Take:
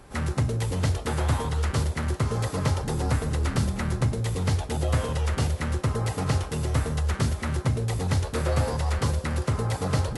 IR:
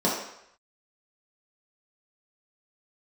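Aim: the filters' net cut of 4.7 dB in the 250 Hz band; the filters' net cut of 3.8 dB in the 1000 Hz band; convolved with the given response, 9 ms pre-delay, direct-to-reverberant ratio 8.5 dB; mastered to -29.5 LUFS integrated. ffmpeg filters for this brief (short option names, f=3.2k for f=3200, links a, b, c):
-filter_complex "[0:a]equalizer=f=250:t=o:g=-7.5,equalizer=f=1k:t=o:g=-4.5,asplit=2[a][b];[1:a]atrim=start_sample=2205,adelay=9[c];[b][c]afir=irnorm=-1:irlink=0,volume=-22.5dB[d];[a][d]amix=inputs=2:normalize=0,volume=-1.5dB"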